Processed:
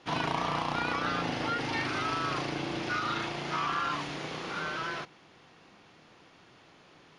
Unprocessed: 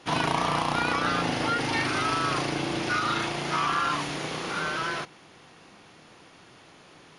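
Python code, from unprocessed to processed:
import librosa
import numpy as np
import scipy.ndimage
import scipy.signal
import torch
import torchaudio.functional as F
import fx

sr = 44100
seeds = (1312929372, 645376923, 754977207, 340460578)

y = scipy.signal.sosfilt(scipy.signal.butter(2, 5900.0, 'lowpass', fs=sr, output='sos'), x)
y = y * librosa.db_to_amplitude(-5.0)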